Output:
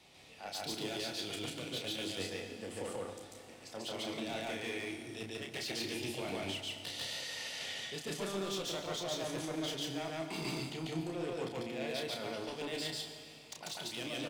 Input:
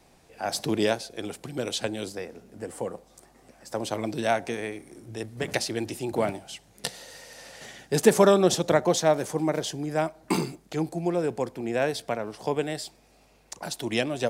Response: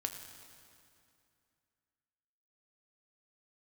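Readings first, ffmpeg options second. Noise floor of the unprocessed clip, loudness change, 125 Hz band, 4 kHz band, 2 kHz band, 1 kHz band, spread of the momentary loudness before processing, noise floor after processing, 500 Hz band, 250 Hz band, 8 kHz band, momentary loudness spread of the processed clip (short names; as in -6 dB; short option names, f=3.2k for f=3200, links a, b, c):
-59 dBFS, -12.0 dB, -12.0 dB, -3.5 dB, -8.0 dB, -14.0 dB, 19 LU, -54 dBFS, -15.0 dB, -12.0 dB, -10.0 dB, 6 LU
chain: -filter_complex "[0:a]highpass=62,equalizer=f=3.2k:t=o:w=1.3:g=13.5,bandreject=f=1.6k:w=11,areverse,acompressor=threshold=-32dB:ratio=5,areverse,asoftclip=type=hard:threshold=-29.5dB,asplit=2[a][b];[b]adelay=31,volume=-5.5dB[c];[a][c]amix=inputs=2:normalize=0,asplit=2[d][e];[1:a]atrim=start_sample=2205,adelay=143[f];[e][f]afir=irnorm=-1:irlink=0,volume=1.5dB[g];[d][g]amix=inputs=2:normalize=0,volume=-7.5dB"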